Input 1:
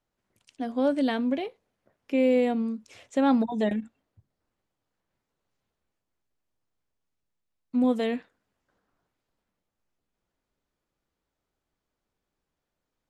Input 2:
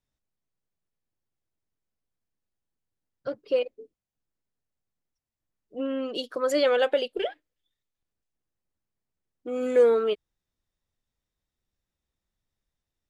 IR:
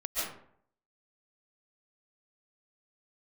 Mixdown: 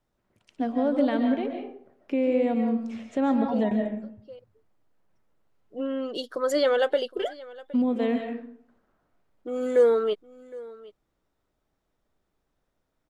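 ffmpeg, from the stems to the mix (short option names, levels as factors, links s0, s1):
-filter_complex "[0:a]lowpass=f=1800:p=1,alimiter=limit=0.0794:level=0:latency=1:release=337,volume=1.33,asplit=3[s0][s1][s2];[s1]volume=0.447[s3];[1:a]equalizer=f=2500:w=6.9:g=-13,volume=1,asplit=2[s4][s5];[s5]volume=0.0944[s6];[s2]apad=whole_len=577535[s7];[s4][s7]sidechaincompress=threshold=0.0141:ratio=8:attack=16:release=656[s8];[2:a]atrim=start_sample=2205[s9];[s3][s9]afir=irnorm=-1:irlink=0[s10];[s6]aecho=0:1:764:1[s11];[s0][s8][s10][s11]amix=inputs=4:normalize=0"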